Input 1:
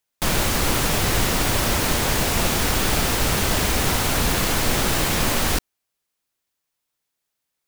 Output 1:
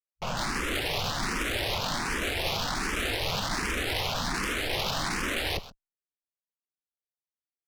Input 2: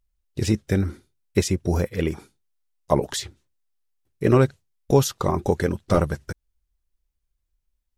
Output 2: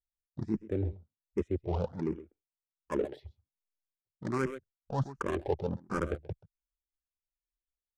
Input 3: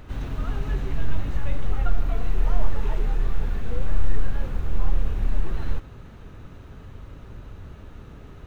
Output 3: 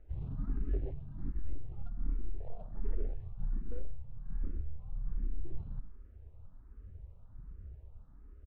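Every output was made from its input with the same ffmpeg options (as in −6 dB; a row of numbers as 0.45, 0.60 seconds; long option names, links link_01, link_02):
-filter_complex "[0:a]bass=frequency=250:gain=-4,treble=frequency=4000:gain=0,afwtdn=0.0398,adynamicsmooth=sensitivity=4:basefreq=970,aecho=1:1:131:0.0841,areverse,acompressor=threshold=-26dB:ratio=5,areverse,highshelf=frequency=2300:gain=10,asplit=2[link_01][link_02];[link_02]afreqshift=1.3[link_03];[link_01][link_03]amix=inputs=2:normalize=1"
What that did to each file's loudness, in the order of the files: −9.0, −12.0, −13.0 LU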